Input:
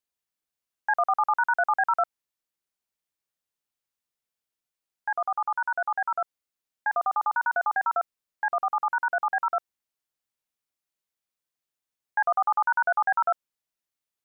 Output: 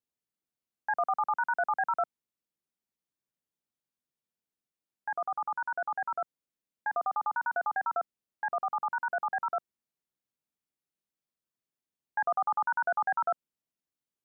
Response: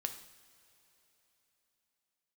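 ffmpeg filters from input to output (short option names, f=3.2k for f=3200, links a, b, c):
-af "equalizer=f=210:w=0.51:g=11.5,volume=-7.5dB"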